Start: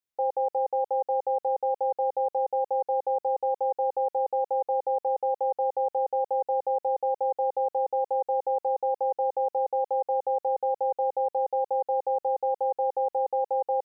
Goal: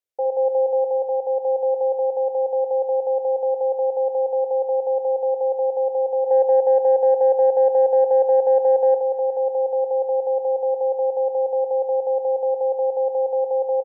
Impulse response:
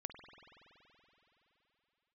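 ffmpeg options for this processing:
-filter_complex "[0:a]equalizer=f=250:t=o:w=1:g=-8,equalizer=f=500:t=o:w=1:g=10,equalizer=f=1k:t=o:w=1:g=-5[a];[1:a]atrim=start_sample=2205,asetrate=32193,aresample=44100[b];[a][b]afir=irnorm=-1:irlink=0,asplit=3[c][d][e];[c]afade=t=out:st=6.26:d=0.02[f];[d]acontrast=31,afade=t=in:st=6.26:d=0.02,afade=t=out:st=8.98:d=0.02[g];[e]afade=t=in:st=8.98:d=0.02[h];[f][g][h]amix=inputs=3:normalize=0,aecho=1:1:445|890|1335|1780|2225:0.126|0.0718|0.0409|0.0233|0.0133,volume=2dB"

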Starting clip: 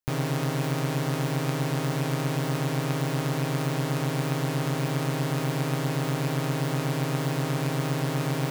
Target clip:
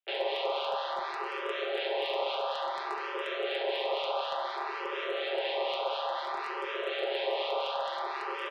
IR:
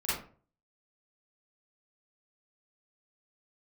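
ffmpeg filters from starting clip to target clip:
-filter_complex "[0:a]highpass=f=160:t=q:w=0.5412,highpass=f=160:t=q:w=1.307,lowpass=f=3.2k:t=q:w=0.5176,lowpass=f=3.2k:t=q:w=0.7071,lowpass=f=3.2k:t=q:w=1.932,afreqshift=400,acrossover=split=1500[a][b];[a]aeval=exprs='val(0)*(1-0.5/2+0.5/2*cos(2*PI*4.1*n/s))':c=same[c];[b]aeval=exprs='val(0)*(1-0.5/2-0.5/2*cos(2*PI*4.1*n/s))':c=same[d];[c][d]amix=inputs=2:normalize=0,asplit=4[e][f][g][h];[f]asetrate=29433,aresample=44100,atempo=1.49831,volume=-10dB[i];[g]asetrate=33038,aresample=44100,atempo=1.33484,volume=-8dB[j];[h]asetrate=35002,aresample=44100,atempo=1.25992,volume=-8dB[k];[e][i][j][k]amix=inputs=4:normalize=0,asplit=2[l][m];[1:a]atrim=start_sample=2205[n];[m][n]afir=irnorm=-1:irlink=0,volume=-16.5dB[o];[l][o]amix=inputs=2:normalize=0,aexciter=amount=4.3:drive=3.5:freq=2.8k,asoftclip=type=hard:threshold=-19.5dB,aecho=1:1:5.1:0.51,asplit=2[p][q];[q]afreqshift=0.57[r];[p][r]amix=inputs=2:normalize=1,volume=-2dB"

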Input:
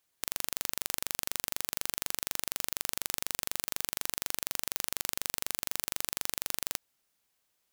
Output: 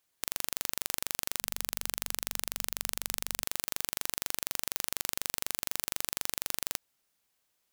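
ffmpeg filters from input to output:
-filter_complex "[0:a]asettb=1/sr,asplit=3[a][b][c];[a]atrim=end=1.394[d];[b]atrim=start=1.39:end=3.44,asetpts=PTS-STARTPTS,afade=t=in:d=0.004:c=qsin,afade=t=out:st=2.046:d=0.004:c=qsin,bandreject=f=49.93:t=h:w=4,bandreject=f=99.86:t=h:w=4,bandreject=f=149.79:t=h:w=4,bandreject=f=199.72:t=h:w=4[e];[c]atrim=start=3.436[f];[d][e]acrossfade=d=0.004:c1=hsin:c2=qsin[g];[g][f]acrossfade=d=0.004:c1=qsin:c2=hsin"

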